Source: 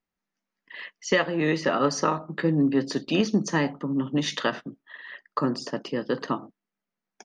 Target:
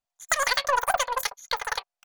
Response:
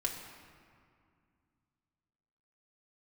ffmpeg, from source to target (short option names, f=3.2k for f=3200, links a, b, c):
-af "asetrate=156555,aresample=44100,aeval=exprs='0.316*(cos(1*acos(clip(val(0)/0.316,-1,1)))-cos(1*PI/2))+0.00891*(cos(6*acos(clip(val(0)/0.316,-1,1)))-cos(6*PI/2))+0.0158*(cos(7*acos(clip(val(0)/0.316,-1,1)))-cos(7*PI/2))':c=same"